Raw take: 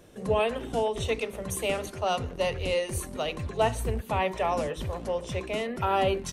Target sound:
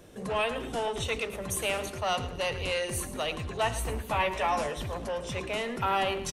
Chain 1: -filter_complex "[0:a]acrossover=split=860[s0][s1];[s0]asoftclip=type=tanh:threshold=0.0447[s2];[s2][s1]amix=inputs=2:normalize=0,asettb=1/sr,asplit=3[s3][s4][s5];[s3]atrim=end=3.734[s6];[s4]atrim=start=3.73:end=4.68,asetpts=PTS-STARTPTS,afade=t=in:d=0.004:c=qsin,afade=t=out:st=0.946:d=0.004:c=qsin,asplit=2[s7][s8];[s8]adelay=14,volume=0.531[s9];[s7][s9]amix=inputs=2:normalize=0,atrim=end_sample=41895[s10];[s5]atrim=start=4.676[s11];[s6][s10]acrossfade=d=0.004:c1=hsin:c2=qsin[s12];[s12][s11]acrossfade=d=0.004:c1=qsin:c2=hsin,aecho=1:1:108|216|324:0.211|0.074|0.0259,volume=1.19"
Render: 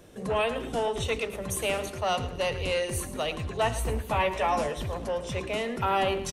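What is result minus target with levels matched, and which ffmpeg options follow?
saturation: distortion -5 dB
-filter_complex "[0:a]acrossover=split=860[s0][s1];[s0]asoftclip=type=tanh:threshold=0.0211[s2];[s2][s1]amix=inputs=2:normalize=0,asettb=1/sr,asplit=3[s3][s4][s5];[s3]atrim=end=3.734[s6];[s4]atrim=start=3.73:end=4.68,asetpts=PTS-STARTPTS,afade=t=in:d=0.004:c=qsin,afade=t=out:st=0.946:d=0.004:c=qsin,asplit=2[s7][s8];[s8]adelay=14,volume=0.531[s9];[s7][s9]amix=inputs=2:normalize=0,atrim=end_sample=41895[s10];[s5]atrim=start=4.676[s11];[s6][s10]acrossfade=d=0.004:c1=hsin:c2=qsin[s12];[s12][s11]acrossfade=d=0.004:c1=qsin:c2=hsin,aecho=1:1:108|216|324:0.211|0.074|0.0259,volume=1.19"

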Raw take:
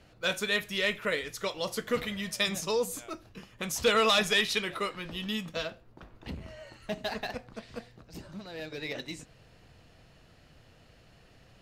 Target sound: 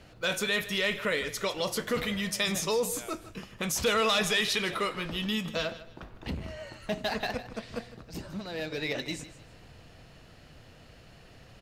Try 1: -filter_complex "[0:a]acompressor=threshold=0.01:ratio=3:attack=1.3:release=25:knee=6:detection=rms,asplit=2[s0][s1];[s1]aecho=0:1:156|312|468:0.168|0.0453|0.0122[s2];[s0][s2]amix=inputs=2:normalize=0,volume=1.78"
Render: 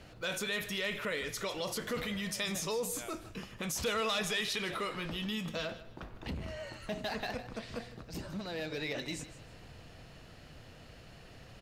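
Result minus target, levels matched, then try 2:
compression: peak gain reduction +7 dB
-filter_complex "[0:a]acompressor=threshold=0.0335:ratio=3:attack=1.3:release=25:knee=6:detection=rms,asplit=2[s0][s1];[s1]aecho=0:1:156|312|468:0.168|0.0453|0.0122[s2];[s0][s2]amix=inputs=2:normalize=0,volume=1.78"

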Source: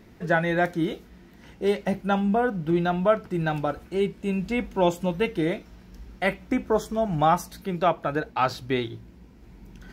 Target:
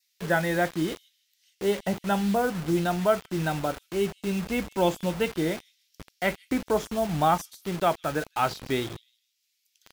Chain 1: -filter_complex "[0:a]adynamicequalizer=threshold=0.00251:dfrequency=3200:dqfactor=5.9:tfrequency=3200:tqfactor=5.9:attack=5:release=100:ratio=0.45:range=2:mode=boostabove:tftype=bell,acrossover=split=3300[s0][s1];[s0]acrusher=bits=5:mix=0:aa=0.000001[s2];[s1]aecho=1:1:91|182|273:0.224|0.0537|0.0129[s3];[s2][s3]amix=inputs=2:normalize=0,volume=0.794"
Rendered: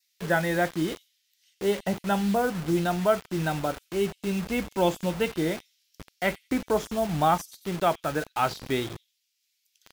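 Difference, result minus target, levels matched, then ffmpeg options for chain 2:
echo 65 ms early
-filter_complex "[0:a]adynamicequalizer=threshold=0.00251:dfrequency=3200:dqfactor=5.9:tfrequency=3200:tqfactor=5.9:attack=5:release=100:ratio=0.45:range=2:mode=boostabove:tftype=bell,acrossover=split=3300[s0][s1];[s0]acrusher=bits=5:mix=0:aa=0.000001[s2];[s1]aecho=1:1:156|312|468:0.224|0.0537|0.0129[s3];[s2][s3]amix=inputs=2:normalize=0,volume=0.794"

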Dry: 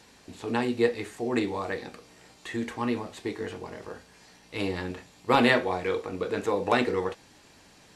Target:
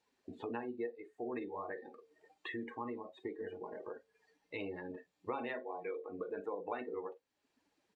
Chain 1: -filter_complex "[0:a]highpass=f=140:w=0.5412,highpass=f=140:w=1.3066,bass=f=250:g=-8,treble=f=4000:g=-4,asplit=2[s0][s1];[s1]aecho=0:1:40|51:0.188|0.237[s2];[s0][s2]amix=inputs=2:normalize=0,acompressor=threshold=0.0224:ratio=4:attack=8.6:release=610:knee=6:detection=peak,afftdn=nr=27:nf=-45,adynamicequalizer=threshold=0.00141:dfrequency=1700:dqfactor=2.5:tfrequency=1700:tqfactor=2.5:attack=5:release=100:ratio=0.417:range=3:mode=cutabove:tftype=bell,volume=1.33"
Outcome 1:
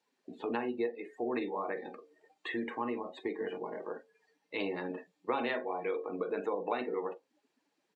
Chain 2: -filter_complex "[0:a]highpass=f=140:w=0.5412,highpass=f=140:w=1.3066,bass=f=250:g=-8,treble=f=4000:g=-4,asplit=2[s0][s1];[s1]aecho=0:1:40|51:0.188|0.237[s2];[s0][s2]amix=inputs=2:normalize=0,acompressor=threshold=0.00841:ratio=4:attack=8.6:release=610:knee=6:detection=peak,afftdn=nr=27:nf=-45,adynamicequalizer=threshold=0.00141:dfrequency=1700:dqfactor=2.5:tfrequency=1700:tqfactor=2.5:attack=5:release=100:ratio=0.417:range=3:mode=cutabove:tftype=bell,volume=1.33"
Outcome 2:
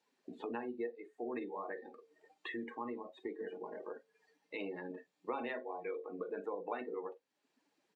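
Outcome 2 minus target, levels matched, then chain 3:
125 Hz band -4.5 dB
-filter_complex "[0:a]bass=f=250:g=-8,treble=f=4000:g=-4,asplit=2[s0][s1];[s1]aecho=0:1:40|51:0.188|0.237[s2];[s0][s2]amix=inputs=2:normalize=0,acompressor=threshold=0.00841:ratio=4:attack=8.6:release=610:knee=6:detection=peak,afftdn=nr=27:nf=-45,adynamicequalizer=threshold=0.00141:dfrequency=1700:dqfactor=2.5:tfrequency=1700:tqfactor=2.5:attack=5:release=100:ratio=0.417:range=3:mode=cutabove:tftype=bell,volume=1.33"

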